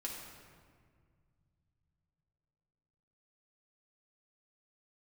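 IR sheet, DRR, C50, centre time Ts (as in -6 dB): -3.0 dB, 2.0 dB, 73 ms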